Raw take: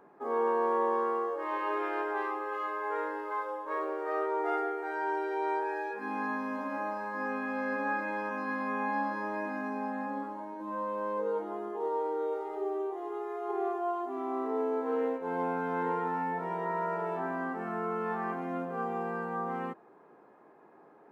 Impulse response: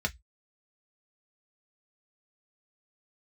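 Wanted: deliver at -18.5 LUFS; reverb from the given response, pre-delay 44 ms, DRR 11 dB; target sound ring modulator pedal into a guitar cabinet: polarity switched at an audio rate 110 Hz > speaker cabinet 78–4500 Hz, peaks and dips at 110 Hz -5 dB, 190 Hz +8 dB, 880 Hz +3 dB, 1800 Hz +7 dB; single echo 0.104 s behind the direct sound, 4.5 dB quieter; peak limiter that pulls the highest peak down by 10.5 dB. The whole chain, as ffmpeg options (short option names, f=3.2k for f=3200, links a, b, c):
-filter_complex "[0:a]alimiter=level_in=4.5dB:limit=-24dB:level=0:latency=1,volume=-4.5dB,aecho=1:1:104:0.596,asplit=2[a][b];[1:a]atrim=start_sample=2205,adelay=44[c];[b][c]afir=irnorm=-1:irlink=0,volume=-17.5dB[d];[a][d]amix=inputs=2:normalize=0,aeval=exprs='val(0)*sgn(sin(2*PI*110*n/s))':c=same,highpass=78,equalizer=f=110:t=q:w=4:g=-5,equalizer=f=190:t=q:w=4:g=8,equalizer=f=880:t=q:w=4:g=3,equalizer=f=1.8k:t=q:w=4:g=7,lowpass=f=4.5k:w=0.5412,lowpass=f=4.5k:w=1.3066,volume=15.5dB"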